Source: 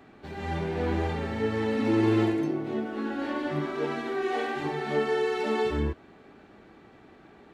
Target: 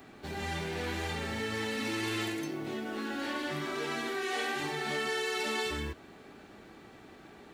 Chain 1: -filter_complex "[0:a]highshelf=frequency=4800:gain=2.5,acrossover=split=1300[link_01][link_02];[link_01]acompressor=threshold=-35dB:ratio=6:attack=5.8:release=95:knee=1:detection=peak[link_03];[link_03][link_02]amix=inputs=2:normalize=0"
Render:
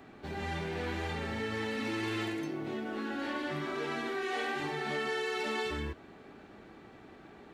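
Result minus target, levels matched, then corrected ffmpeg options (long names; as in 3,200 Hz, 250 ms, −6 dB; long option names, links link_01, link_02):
8,000 Hz band −7.0 dB
-filter_complex "[0:a]highshelf=frequency=4800:gain=14.5,acrossover=split=1300[link_01][link_02];[link_01]acompressor=threshold=-35dB:ratio=6:attack=5.8:release=95:knee=1:detection=peak[link_03];[link_03][link_02]amix=inputs=2:normalize=0"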